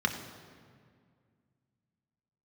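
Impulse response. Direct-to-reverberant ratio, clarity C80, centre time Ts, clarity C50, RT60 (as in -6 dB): 3.0 dB, 9.0 dB, 26 ms, 8.0 dB, 2.0 s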